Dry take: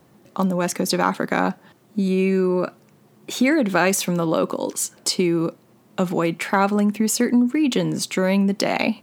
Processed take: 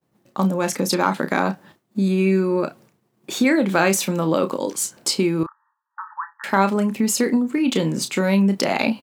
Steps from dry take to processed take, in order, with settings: expander -44 dBFS; 5.43–6.44 s: brick-wall FIR band-pass 840–1900 Hz; doubling 31 ms -9 dB

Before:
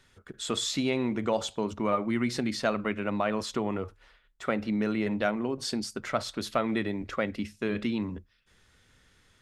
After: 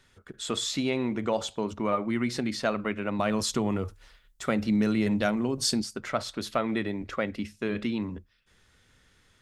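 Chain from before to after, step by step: 3.19–5.82 s: tone controls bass +7 dB, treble +11 dB

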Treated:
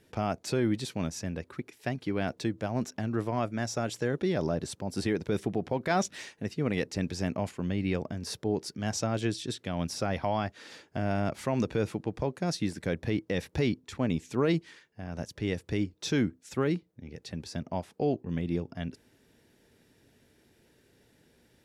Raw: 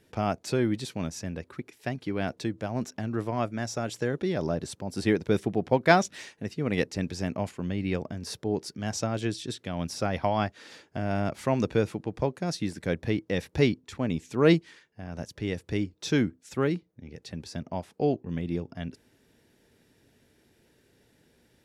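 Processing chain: peak limiter -17.5 dBFS, peak gain reduction 11 dB

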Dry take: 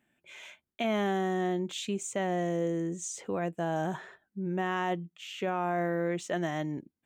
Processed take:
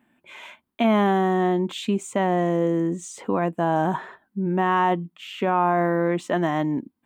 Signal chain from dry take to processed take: fifteen-band graphic EQ 250 Hz +9 dB, 1 kHz +10 dB, 6.3 kHz -8 dB; trim +5.5 dB

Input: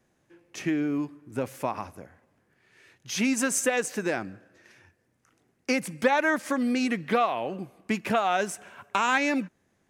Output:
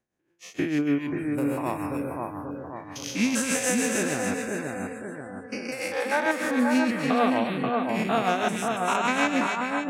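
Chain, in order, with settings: spectrogram pixelated in time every 200 ms; 5.71–6.26 s: elliptic high-pass 340 Hz; in parallel at -0.5 dB: compression, threshold -42 dBFS, peak gain reduction 16.5 dB; on the sum: tremolo 6.5 Hz, depth 57%; on a send: two-band feedback delay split 1.7 kHz, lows 533 ms, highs 282 ms, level -3 dB; on the sum: spectral noise reduction 21 dB; trim +5 dB

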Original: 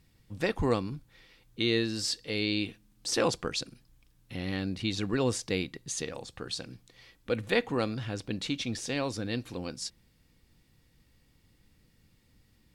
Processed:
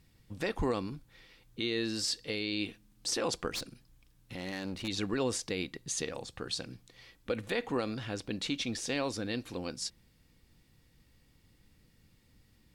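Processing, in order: dynamic bell 120 Hz, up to -6 dB, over -45 dBFS, Q 1.1; peak limiter -22 dBFS, peak gain reduction 9 dB; 3.51–4.88 s: one-sided clip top -41.5 dBFS, bottom -27.5 dBFS

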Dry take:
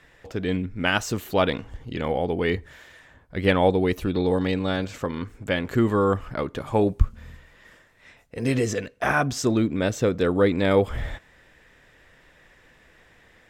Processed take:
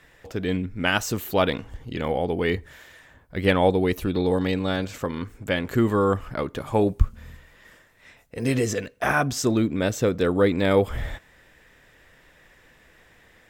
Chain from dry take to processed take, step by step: treble shelf 12 kHz +12 dB

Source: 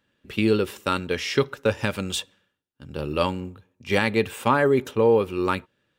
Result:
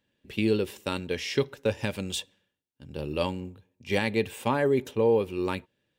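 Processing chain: peaking EQ 1.3 kHz -10 dB 0.5 oct; trim -4 dB

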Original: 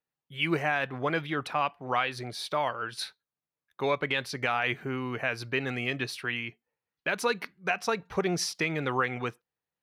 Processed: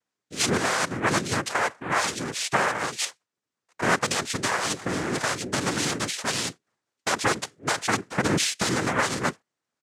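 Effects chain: peak limiter -21 dBFS, peak gain reduction 5.5 dB; comb 1.8 ms, depth 34%; noise-vocoded speech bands 3; trim +7 dB

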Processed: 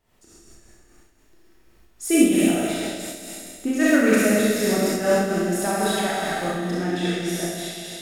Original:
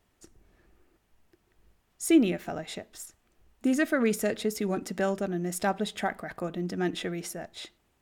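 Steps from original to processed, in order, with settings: feedback echo behind a high-pass 66 ms, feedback 81%, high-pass 2.3 kHz, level -6 dB; Schroeder reverb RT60 2.2 s, combs from 26 ms, DRR -7.5 dB; random flutter of the level, depth 60%; trim +3 dB

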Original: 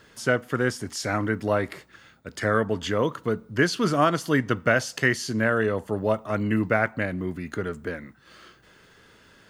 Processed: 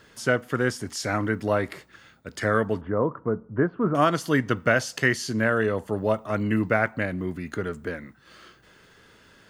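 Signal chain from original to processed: 2.81–3.95 s: low-pass 1.3 kHz 24 dB/octave

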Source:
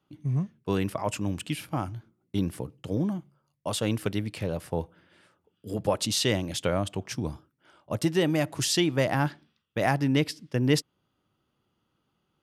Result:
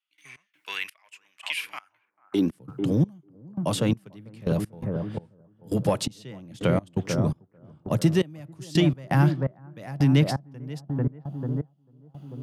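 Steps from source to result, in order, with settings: bass shelf 100 Hz +5.5 dB; in parallel at -10 dB: hard clipper -22 dBFS, distortion -11 dB; on the sum: high-pass sweep 2.3 kHz -> 140 Hz, 1.76–2.65 s; bucket-brigade echo 443 ms, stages 4096, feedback 46%, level -7 dB; trance gate ".x.xx...xx.." 84 bpm -24 dB; three bands compressed up and down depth 40%

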